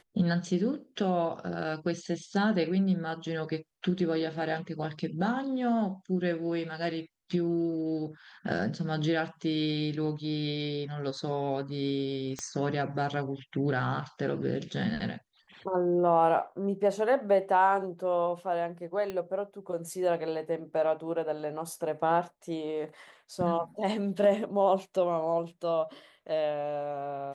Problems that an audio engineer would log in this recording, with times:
0:12.39: click −22 dBFS
0:19.10: click −22 dBFS

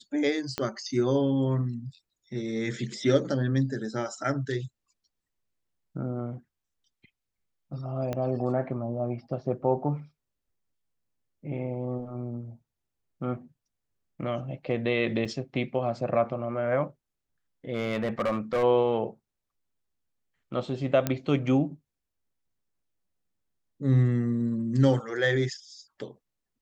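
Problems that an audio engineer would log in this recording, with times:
0:00.58: click −14 dBFS
0:08.13: click −18 dBFS
0:15.25–0:15.26: drop-out 5 ms
0:17.74–0:18.64: clipping −22.5 dBFS
0:21.07: click −11 dBFS

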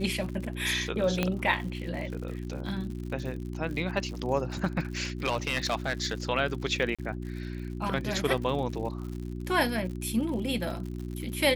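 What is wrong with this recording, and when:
surface crackle 88 per second −37 dBFS
mains hum 60 Hz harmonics 6 −36 dBFS
0:01.23: click −12 dBFS
0:05.24–0:06.14: clipping −22 dBFS
0:06.95–0:06.99: drop-out 36 ms

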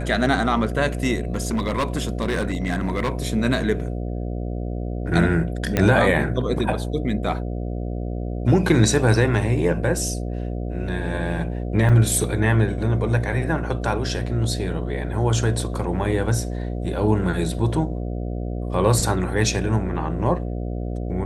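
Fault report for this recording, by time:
mains buzz 60 Hz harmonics 12 −27 dBFS
0:01.32–0:03.12: clipping −18 dBFS
0:05.77: click −6 dBFS
0:11.89–0:11.90: drop-out 5.1 ms

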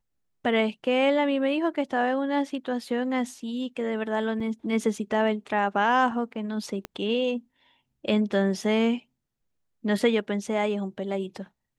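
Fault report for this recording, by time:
0:04.40: drop-out 4.4 ms
0:06.85: click −18 dBFS

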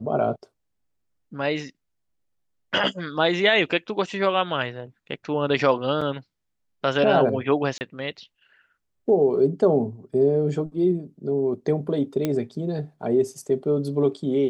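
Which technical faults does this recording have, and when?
0:06.01: drop-out 4.8 ms
0:07.78–0:07.81: drop-out 29 ms
0:12.25: click −11 dBFS

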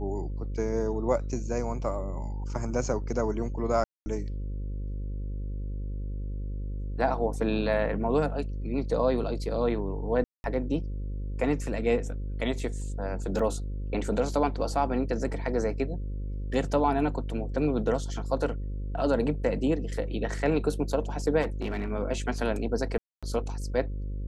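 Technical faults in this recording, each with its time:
mains buzz 50 Hz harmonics 11 −33 dBFS
0:03.84–0:04.06: drop-out 220 ms
0:10.24–0:10.44: drop-out 201 ms
0:13.39: drop-out 3.6 ms
0:21.41–0:21.90: clipping −26 dBFS
0:22.98–0:23.23: drop-out 246 ms

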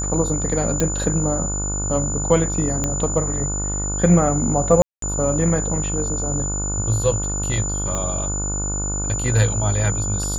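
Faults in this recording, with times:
mains buzz 50 Hz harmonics 30 −26 dBFS
whistle 7,000 Hz −25 dBFS
0:00.80: click −6 dBFS
0:02.84: click −8 dBFS
0:04.82–0:05.02: drop-out 203 ms
0:07.95: click −12 dBFS

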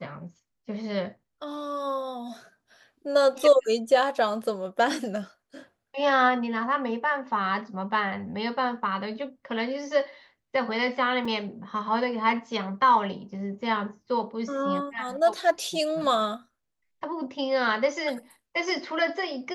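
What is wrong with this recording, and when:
0:11.25: drop-out 3.8 ms

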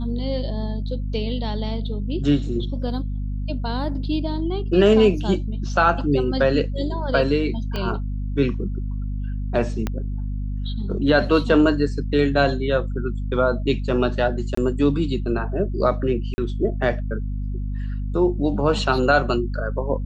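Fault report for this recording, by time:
mains hum 50 Hz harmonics 5 −26 dBFS
0:07.76: click −14 dBFS
0:09.87: click −11 dBFS
0:14.55–0:14.57: drop-out 24 ms
0:16.34–0:16.38: drop-out 40 ms

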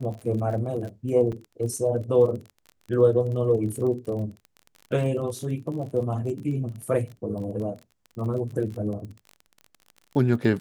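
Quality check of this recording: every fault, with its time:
surface crackle 35 per second −34 dBFS
0:01.32–0:01.33: drop-out 6.2 ms

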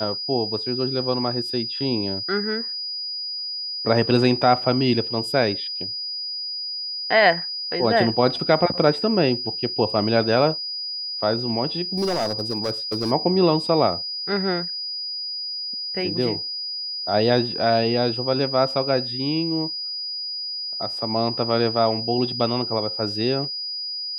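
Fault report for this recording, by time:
whistle 4,900 Hz −27 dBFS
0:11.95–0:13.12: clipping −19 dBFS

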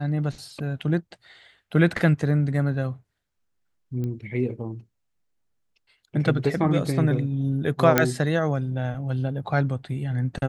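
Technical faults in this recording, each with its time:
0:04.04: click −21 dBFS
0:07.98: click −2 dBFS

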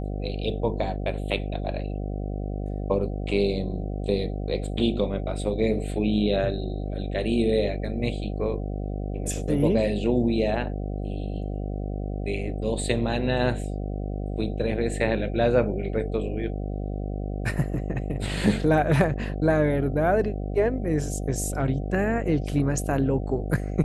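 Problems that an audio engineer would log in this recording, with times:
mains buzz 50 Hz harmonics 15 −30 dBFS

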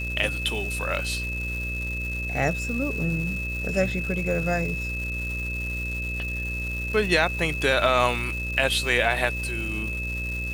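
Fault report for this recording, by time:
mains buzz 60 Hz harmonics 10 −32 dBFS
surface crackle 510 per second −33 dBFS
whistle 2,600 Hz −30 dBFS

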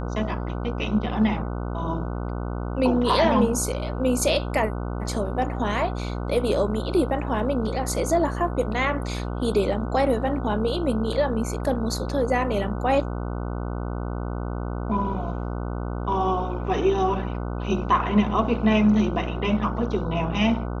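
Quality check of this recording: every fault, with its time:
mains buzz 60 Hz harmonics 25 −29 dBFS

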